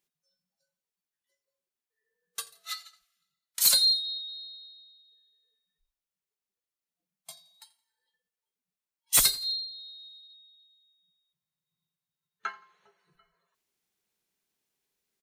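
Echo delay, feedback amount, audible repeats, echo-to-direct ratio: 85 ms, 35%, 2, -20.5 dB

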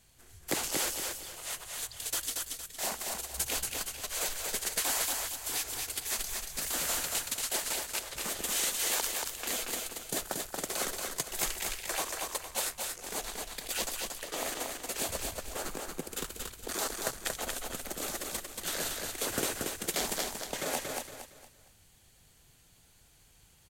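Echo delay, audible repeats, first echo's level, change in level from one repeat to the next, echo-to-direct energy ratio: 0.231 s, 4, -3.5 dB, -9.5 dB, -3.0 dB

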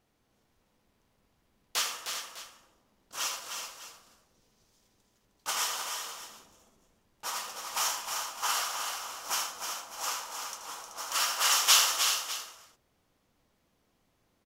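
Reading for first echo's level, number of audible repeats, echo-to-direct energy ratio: -10.0 dB, 4, -3.5 dB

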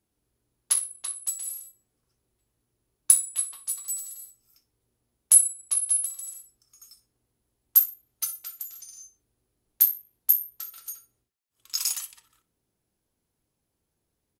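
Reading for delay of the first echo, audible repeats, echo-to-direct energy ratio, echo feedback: 62 ms, 2, -17.0 dB, 23%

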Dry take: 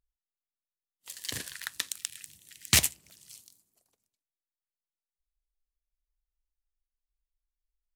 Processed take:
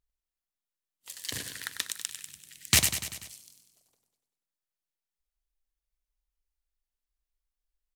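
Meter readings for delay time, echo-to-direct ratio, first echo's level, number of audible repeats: 97 ms, -7.0 dB, -9.0 dB, 5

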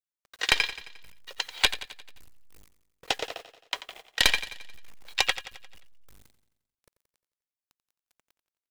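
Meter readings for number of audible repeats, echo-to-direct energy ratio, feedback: 5, -12.0 dB, 55%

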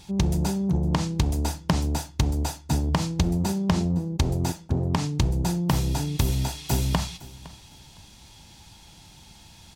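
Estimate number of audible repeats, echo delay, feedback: 2, 0.51 s, 20%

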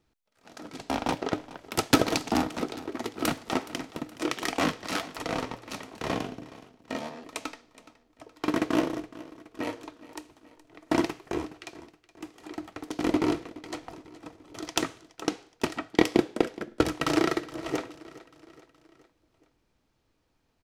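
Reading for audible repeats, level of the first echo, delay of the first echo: 3, -18.5 dB, 0.42 s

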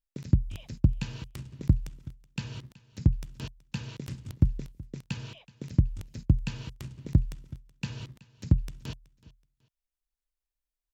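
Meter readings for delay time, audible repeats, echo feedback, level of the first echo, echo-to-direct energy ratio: 0.375 s, 2, 28%, -21.0 dB, -20.5 dB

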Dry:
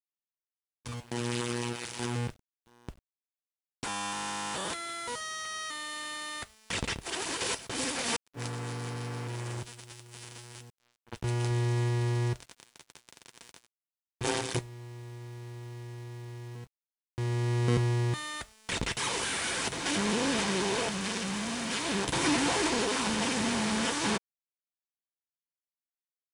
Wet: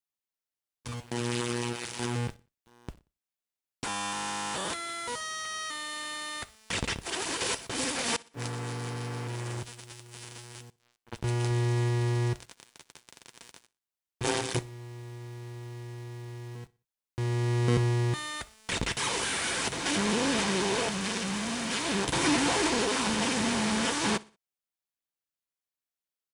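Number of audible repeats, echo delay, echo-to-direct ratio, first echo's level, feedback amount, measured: 2, 61 ms, -22.0 dB, -22.5 dB, 38%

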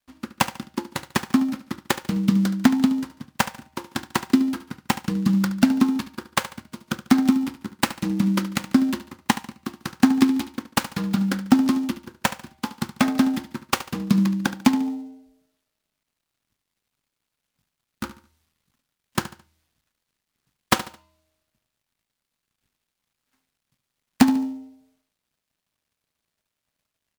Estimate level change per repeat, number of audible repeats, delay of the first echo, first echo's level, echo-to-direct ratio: -9.5 dB, 3, 72 ms, -14.0 dB, -13.5 dB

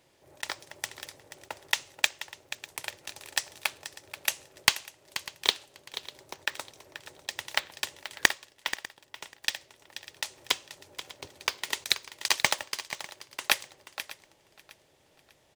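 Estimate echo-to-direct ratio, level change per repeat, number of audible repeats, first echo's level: -12.0 dB, no steady repeat, 4, -13.0 dB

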